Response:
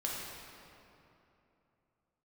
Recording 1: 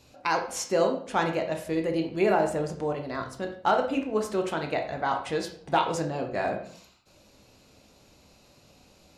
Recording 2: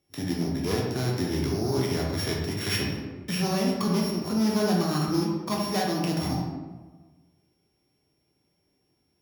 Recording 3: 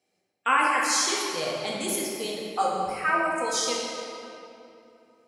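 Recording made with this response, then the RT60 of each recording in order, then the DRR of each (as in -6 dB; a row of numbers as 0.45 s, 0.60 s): 3; 0.55 s, 1.3 s, 3.0 s; 3.5 dB, -3.0 dB, -4.5 dB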